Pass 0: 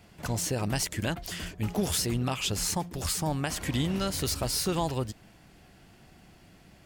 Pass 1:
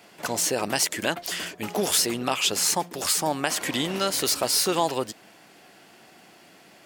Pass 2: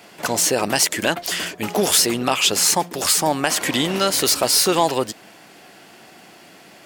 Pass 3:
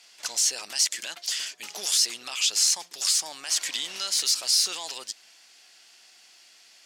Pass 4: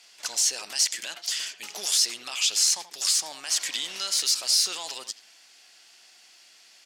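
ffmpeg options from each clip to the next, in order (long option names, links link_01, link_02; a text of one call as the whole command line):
ffmpeg -i in.wav -af "highpass=340,volume=7.5dB" out.wav
ffmpeg -i in.wav -af "acontrast=66" out.wav
ffmpeg -i in.wav -af "alimiter=limit=-9.5dB:level=0:latency=1:release=21,bandpass=frequency=5500:width_type=q:width=1.4:csg=0" out.wav
ffmpeg -i in.wav -filter_complex "[0:a]asplit=2[link_01][link_02];[link_02]adelay=80,highpass=300,lowpass=3400,asoftclip=type=hard:threshold=-19.5dB,volume=-12dB[link_03];[link_01][link_03]amix=inputs=2:normalize=0" out.wav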